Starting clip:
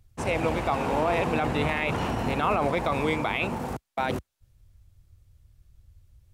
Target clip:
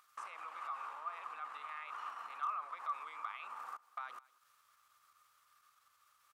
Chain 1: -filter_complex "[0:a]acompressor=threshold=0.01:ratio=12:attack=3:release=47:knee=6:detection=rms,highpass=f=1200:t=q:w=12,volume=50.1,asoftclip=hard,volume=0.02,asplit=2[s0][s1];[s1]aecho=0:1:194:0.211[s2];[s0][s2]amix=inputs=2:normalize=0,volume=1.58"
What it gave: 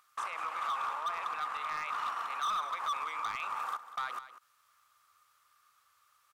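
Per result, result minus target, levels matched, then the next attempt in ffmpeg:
compression: peak gain reduction -10.5 dB; echo-to-direct +9 dB
-filter_complex "[0:a]acompressor=threshold=0.00266:ratio=12:attack=3:release=47:knee=6:detection=rms,highpass=f=1200:t=q:w=12,volume=50.1,asoftclip=hard,volume=0.02,asplit=2[s0][s1];[s1]aecho=0:1:194:0.211[s2];[s0][s2]amix=inputs=2:normalize=0,volume=1.58"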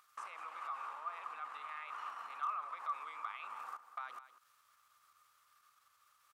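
echo-to-direct +9 dB
-filter_complex "[0:a]acompressor=threshold=0.00266:ratio=12:attack=3:release=47:knee=6:detection=rms,highpass=f=1200:t=q:w=12,volume=50.1,asoftclip=hard,volume=0.02,asplit=2[s0][s1];[s1]aecho=0:1:194:0.075[s2];[s0][s2]amix=inputs=2:normalize=0,volume=1.58"

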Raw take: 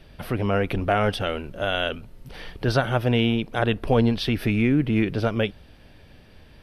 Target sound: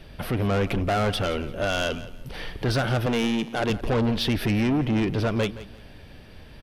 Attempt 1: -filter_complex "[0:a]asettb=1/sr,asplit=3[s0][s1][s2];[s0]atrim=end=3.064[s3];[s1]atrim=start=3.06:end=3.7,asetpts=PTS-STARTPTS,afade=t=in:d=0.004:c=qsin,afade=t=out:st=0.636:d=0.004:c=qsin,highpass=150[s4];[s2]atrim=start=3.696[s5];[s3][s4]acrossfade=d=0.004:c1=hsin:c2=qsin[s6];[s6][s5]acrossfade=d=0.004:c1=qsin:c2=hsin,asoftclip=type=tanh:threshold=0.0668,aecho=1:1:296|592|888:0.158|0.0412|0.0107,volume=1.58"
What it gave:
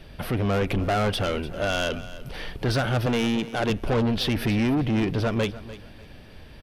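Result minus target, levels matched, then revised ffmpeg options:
echo 126 ms late
-filter_complex "[0:a]asettb=1/sr,asplit=3[s0][s1][s2];[s0]atrim=end=3.064[s3];[s1]atrim=start=3.06:end=3.7,asetpts=PTS-STARTPTS,afade=t=in:d=0.004:c=qsin,afade=t=out:st=0.636:d=0.004:c=qsin,highpass=150[s4];[s2]atrim=start=3.696[s5];[s3][s4]acrossfade=d=0.004:c1=hsin:c2=qsin[s6];[s6][s5]acrossfade=d=0.004:c1=qsin:c2=hsin,asoftclip=type=tanh:threshold=0.0668,aecho=1:1:170|340|510:0.158|0.0412|0.0107,volume=1.58"

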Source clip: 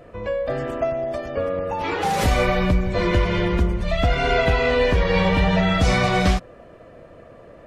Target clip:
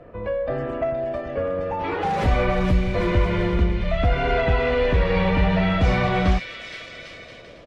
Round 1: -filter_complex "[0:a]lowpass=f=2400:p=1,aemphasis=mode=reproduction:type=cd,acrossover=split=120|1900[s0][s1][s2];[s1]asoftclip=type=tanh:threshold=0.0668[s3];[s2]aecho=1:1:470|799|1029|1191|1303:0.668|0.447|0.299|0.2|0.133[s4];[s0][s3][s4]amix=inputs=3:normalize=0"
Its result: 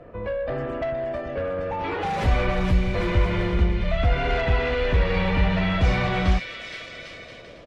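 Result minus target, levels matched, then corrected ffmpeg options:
saturation: distortion +8 dB
-filter_complex "[0:a]lowpass=f=2400:p=1,aemphasis=mode=reproduction:type=cd,acrossover=split=120|1900[s0][s1][s2];[s1]asoftclip=type=tanh:threshold=0.168[s3];[s2]aecho=1:1:470|799|1029|1191|1303:0.668|0.447|0.299|0.2|0.133[s4];[s0][s3][s4]amix=inputs=3:normalize=0"

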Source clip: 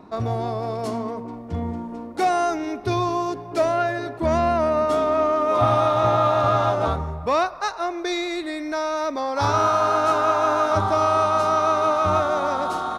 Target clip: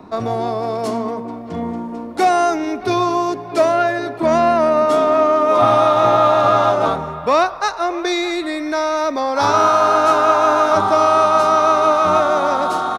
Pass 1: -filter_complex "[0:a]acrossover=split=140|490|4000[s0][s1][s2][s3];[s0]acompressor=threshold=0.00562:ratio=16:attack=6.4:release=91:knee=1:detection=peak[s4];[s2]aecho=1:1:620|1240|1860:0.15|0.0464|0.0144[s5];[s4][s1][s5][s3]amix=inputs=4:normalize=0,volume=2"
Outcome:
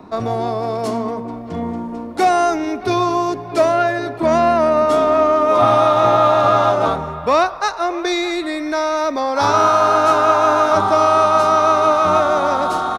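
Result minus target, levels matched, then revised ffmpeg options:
compression: peak gain reduction -8.5 dB
-filter_complex "[0:a]acrossover=split=140|490|4000[s0][s1][s2][s3];[s0]acompressor=threshold=0.002:ratio=16:attack=6.4:release=91:knee=1:detection=peak[s4];[s2]aecho=1:1:620|1240|1860:0.15|0.0464|0.0144[s5];[s4][s1][s5][s3]amix=inputs=4:normalize=0,volume=2"

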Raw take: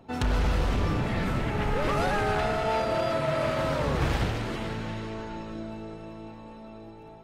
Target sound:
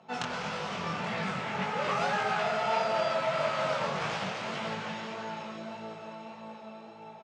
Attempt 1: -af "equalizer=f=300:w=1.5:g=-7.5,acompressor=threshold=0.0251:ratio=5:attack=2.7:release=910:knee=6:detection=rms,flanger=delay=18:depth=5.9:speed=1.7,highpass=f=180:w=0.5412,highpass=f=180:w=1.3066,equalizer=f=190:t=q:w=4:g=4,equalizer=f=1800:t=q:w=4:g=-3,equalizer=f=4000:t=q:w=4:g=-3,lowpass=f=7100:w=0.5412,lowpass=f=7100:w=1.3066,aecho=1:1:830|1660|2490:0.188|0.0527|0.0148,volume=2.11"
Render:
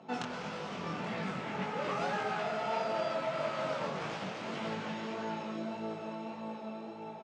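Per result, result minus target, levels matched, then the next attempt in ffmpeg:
compression: peak gain reduction +8 dB; 250 Hz band +5.5 dB
-af "equalizer=f=300:w=1.5:g=-7.5,acompressor=threshold=0.0708:ratio=5:attack=2.7:release=910:knee=6:detection=rms,flanger=delay=18:depth=5.9:speed=1.7,highpass=f=180:w=0.5412,highpass=f=180:w=1.3066,equalizer=f=190:t=q:w=4:g=4,equalizer=f=1800:t=q:w=4:g=-3,equalizer=f=4000:t=q:w=4:g=-3,lowpass=f=7100:w=0.5412,lowpass=f=7100:w=1.3066,aecho=1:1:830|1660|2490:0.188|0.0527|0.0148,volume=2.11"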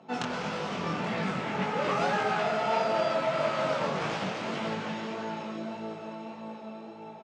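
250 Hz band +4.0 dB
-af "equalizer=f=300:w=1.5:g=-18.5,acompressor=threshold=0.0708:ratio=5:attack=2.7:release=910:knee=6:detection=rms,flanger=delay=18:depth=5.9:speed=1.7,highpass=f=180:w=0.5412,highpass=f=180:w=1.3066,equalizer=f=190:t=q:w=4:g=4,equalizer=f=1800:t=q:w=4:g=-3,equalizer=f=4000:t=q:w=4:g=-3,lowpass=f=7100:w=0.5412,lowpass=f=7100:w=1.3066,aecho=1:1:830|1660|2490:0.188|0.0527|0.0148,volume=2.11"

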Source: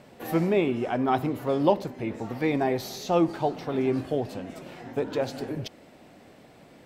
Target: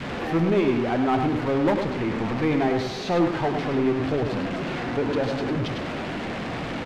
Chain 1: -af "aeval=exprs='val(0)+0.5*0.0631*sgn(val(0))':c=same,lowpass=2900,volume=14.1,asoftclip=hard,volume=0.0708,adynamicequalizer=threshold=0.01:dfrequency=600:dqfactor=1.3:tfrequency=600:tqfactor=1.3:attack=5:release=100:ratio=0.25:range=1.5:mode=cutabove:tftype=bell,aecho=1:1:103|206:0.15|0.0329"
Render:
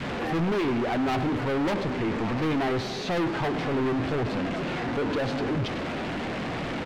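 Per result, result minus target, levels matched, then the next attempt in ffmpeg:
overload inside the chain: distortion +12 dB; echo-to-direct -10.5 dB
-af "aeval=exprs='val(0)+0.5*0.0631*sgn(val(0))':c=same,lowpass=2900,volume=5.62,asoftclip=hard,volume=0.178,adynamicequalizer=threshold=0.01:dfrequency=600:dqfactor=1.3:tfrequency=600:tqfactor=1.3:attack=5:release=100:ratio=0.25:range=1.5:mode=cutabove:tftype=bell,aecho=1:1:103|206:0.15|0.0329"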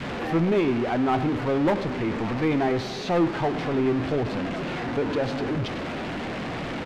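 echo-to-direct -10.5 dB
-af "aeval=exprs='val(0)+0.5*0.0631*sgn(val(0))':c=same,lowpass=2900,volume=5.62,asoftclip=hard,volume=0.178,adynamicequalizer=threshold=0.01:dfrequency=600:dqfactor=1.3:tfrequency=600:tqfactor=1.3:attack=5:release=100:ratio=0.25:range=1.5:mode=cutabove:tftype=bell,aecho=1:1:103|206|309:0.501|0.11|0.0243"

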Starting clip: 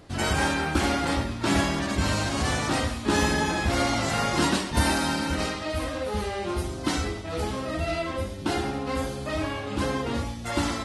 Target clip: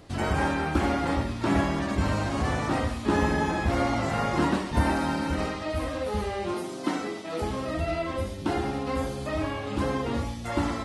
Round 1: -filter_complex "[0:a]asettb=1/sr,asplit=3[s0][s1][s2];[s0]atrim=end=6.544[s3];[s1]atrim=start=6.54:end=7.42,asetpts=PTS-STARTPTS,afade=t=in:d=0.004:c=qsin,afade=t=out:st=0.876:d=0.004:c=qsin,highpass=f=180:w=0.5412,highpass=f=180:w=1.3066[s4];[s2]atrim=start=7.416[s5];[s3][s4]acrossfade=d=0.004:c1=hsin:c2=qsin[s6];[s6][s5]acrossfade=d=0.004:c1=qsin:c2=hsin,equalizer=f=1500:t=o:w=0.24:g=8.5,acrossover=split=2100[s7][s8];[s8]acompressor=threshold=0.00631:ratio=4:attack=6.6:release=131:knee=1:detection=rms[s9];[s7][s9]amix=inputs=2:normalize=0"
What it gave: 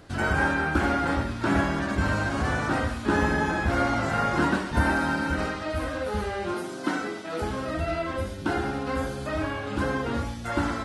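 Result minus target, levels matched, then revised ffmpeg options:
2 kHz band +4.5 dB
-filter_complex "[0:a]asettb=1/sr,asplit=3[s0][s1][s2];[s0]atrim=end=6.544[s3];[s1]atrim=start=6.54:end=7.42,asetpts=PTS-STARTPTS,afade=t=in:d=0.004:c=qsin,afade=t=out:st=0.876:d=0.004:c=qsin,highpass=f=180:w=0.5412,highpass=f=180:w=1.3066[s4];[s2]atrim=start=7.416[s5];[s3][s4]acrossfade=d=0.004:c1=hsin:c2=qsin[s6];[s6][s5]acrossfade=d=0.004:c1=qsin:c2=hsin,equalizer=f=1500:t=o:w=0.24:g=-3,acrossover=split=2100[s7][s8];[s8]acompressor=threshold=0.00631:ratio=4:attack=6.6:release=131:knee=1:detection=rms[s9];[s7][s9]amix=inputs=2:normalize=0"

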